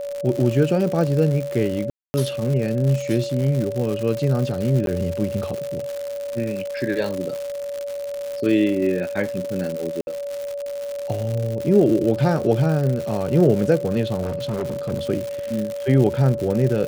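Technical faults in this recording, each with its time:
crackle 180 per s -25 dBFS
whine 570 Hz -26 dBFS
1.90–2.14 s: dropout 240 ms
4.86–4.87 s: dropout
10.01–10.07 s: dropout 61 ms
14.22–14.92 s: clipped -21 dBFS

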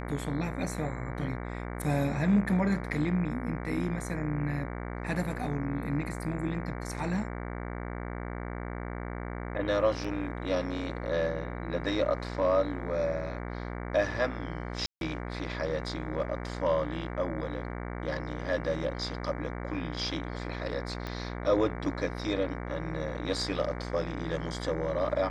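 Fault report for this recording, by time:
buzz 60 Hz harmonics 38 -37 dBFS
10.04 s: dropout 4.7 ms
14.86–15.01 s: dropout 152 ms
21.07 s: pop -22 dBFS

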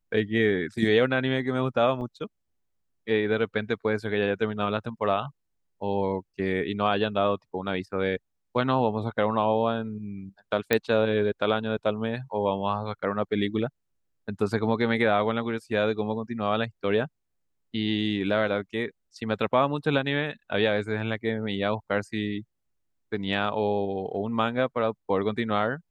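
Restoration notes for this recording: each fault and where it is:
2.01–2.02 s: dropout 5.9 ms
10.73 s: pop -8 dBFS

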